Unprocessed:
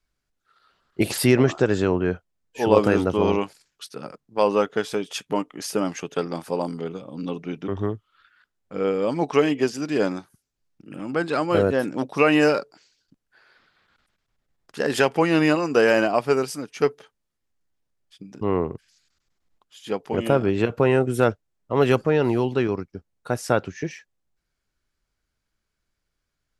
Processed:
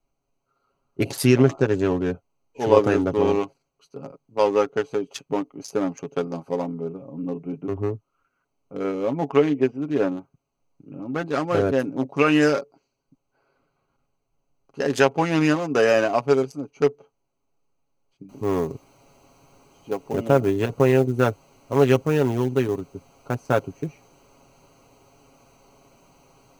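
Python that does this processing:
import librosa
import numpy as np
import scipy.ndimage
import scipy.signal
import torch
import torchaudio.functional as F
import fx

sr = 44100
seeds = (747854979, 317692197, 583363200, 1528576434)

y = fx.savgol(x, sr, points=25, at=(6.61, 11.26))
y = fx.noise_floor_step(y, sr, seeds[0], at_s=18.29, before_db=-68, after_db=-42, tilt_db=0.0)
y = fx.wiener(y, sr, points=25)
y = fx.peak_eq(y, sr, hz=6300.0, db=8.5, octaves=0.24)
y = y + 0.52 * np.pad(y, (int(7.3 * sr / 1000.0), 0))[:len(y)]
y = y * 10.0 ** (-1.0 / 20.0)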